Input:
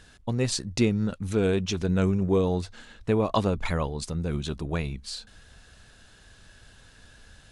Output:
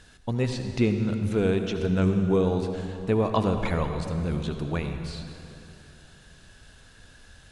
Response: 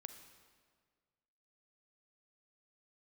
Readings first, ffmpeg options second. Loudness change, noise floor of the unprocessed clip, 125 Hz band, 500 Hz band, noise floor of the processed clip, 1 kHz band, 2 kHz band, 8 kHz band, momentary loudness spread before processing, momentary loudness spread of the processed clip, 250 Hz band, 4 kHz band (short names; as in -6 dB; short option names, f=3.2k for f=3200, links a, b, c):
+0.5 dB, -55 dBFS, +1.0 dB, +1.0 dB, -53 dBFS, +1.0 dB, 0.0 dB, -10.0 dB, 10 LU, 11 LU, +1.0 dB, -4.0 dB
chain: -filter_complex "[0:a]acrossover=split=3500[a][b];[b]acompressor=threshold=-46dB:ratio=4:attack=1:release=60[c];[a][c]amix=inputs=2:normalize=0[d];[1:a]atrim=start_sample=2205,asetrate=25137,aresample=44100[e];[d][e]afir=irnorm=-1:irlink=0,volume=3dB"